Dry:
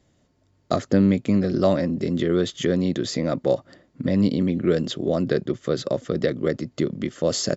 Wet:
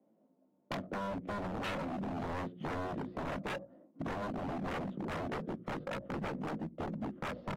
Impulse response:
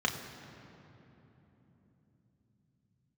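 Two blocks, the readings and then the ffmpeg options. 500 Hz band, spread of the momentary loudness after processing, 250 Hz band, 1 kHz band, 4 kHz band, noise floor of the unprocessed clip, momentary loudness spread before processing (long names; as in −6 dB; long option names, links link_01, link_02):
−18.0 dB, 3 LU, −17.5 dB, −4.5 dB, −17.0 dB, −64 dBFS, 7 LU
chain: -filter_complex "[0:a]equalizer=frequency=1800:width_type=o:width=0.52:gain=-9.5,acrossover=split=230|720[link_01][link_02][link_03];[link_01]aeval=exprs='sgn(val(0))*max(abs(val(0))-0.00335,0)':channel_layout=same[link_04];[link_04][link_02][link_03]amix=inputs=3:normalize=0,highpass=180,equalizer=frequency=190:width_type=q:width=4:gain=9,equalizer=frequency=400:width_type=q:width=4:gain=-8,equalizer=frequency=1200:width_type=q:width=4:gain=-3,lowpass=frequency=3100:width=0.5412,lowpass=frequency=3100:width=1.3066,asplit=2[link_05][link_06];[link_06]aecho=0:1:95:0.0794[link_07];[link_05][link_07]amix=inputs=2:normalize=0,flanger=delay=18:depth=2.3:speed=0.73,alimiter=limit=-16dB:level=0:latency=1:release=277,adynamicsmooth=sensitivity=1:basefreq=680,aeval=exprs='0.0376*(abs(mod(val(0)/0.0376+3,4)-2)-1)':channel_layout=same,bandreject=frequency=60:width_type=h:width=6,bandreject=frequency=120:width_type=h:width=6,bandreject=frequency=180:width_type=h:width=6,bandreject=frequency=240:width_type=h:width=6,bandreject=frequency=300:width_type=h:width=6,bandreject=frequency=360:width_type=h:width=6,acompressor=threshold=-48dB:ratio=2.5,volume=6.5dB" -ar 44100 -c:a aac -b:a 48k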